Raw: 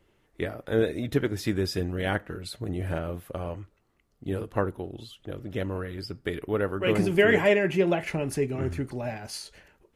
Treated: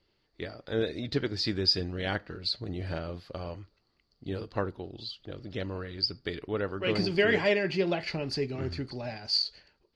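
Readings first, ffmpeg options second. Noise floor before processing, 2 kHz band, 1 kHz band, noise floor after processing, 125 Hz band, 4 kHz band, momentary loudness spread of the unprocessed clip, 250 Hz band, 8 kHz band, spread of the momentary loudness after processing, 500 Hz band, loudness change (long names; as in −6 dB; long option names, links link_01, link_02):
−69 dBFS, −3.5 dB, −4.5 dB, −74 dBFS, −4.5 dB, +8.0 dB, 16 LU, −5.0 dB, can't be measured, 15 LU, −5.0 dB, −3.0 dB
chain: -af "dynaudnorm=framelen=120:gausssize=11:maxgain=4dB,lowpass=frequency=4600:width_type=q:width=14,volume=-8.5dB"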